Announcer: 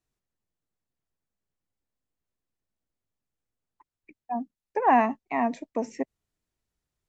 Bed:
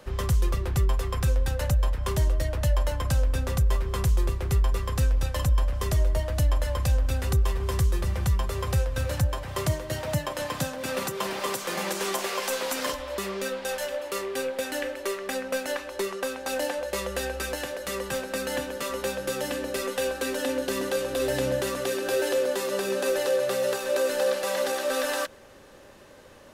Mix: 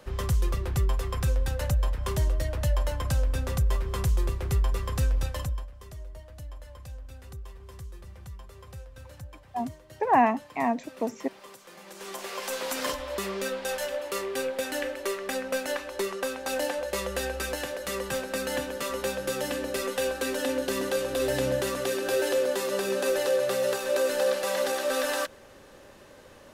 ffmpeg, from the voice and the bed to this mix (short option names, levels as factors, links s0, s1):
-filter_complex "[0:a]adelay=5250,volume=0.944[s0];[1:a]volume=6.31,afade=t=out:st=5.22:d=0.47:silence=0.149624,afade=t=in:st=11.86:d=1.06:silence=0.125893[s1];[s0][s1]amix=inputs=2:normalize=0"